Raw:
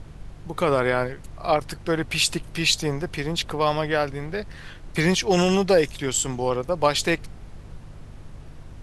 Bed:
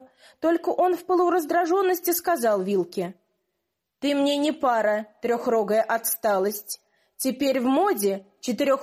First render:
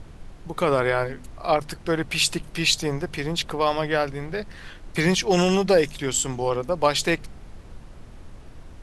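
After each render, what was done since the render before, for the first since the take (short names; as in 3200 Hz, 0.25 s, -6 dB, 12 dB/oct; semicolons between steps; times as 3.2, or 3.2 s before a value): de-hum 50 Hz, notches 5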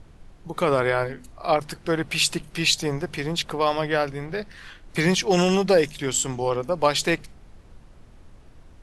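noise print and reduce 6 dB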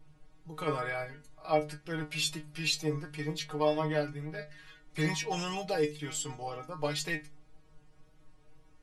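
metallic resonator 150 Hz, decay 0.25 s, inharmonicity 0.002; wow and flutter 21 cents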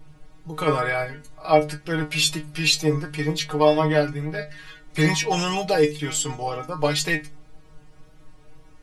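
gain +11 dB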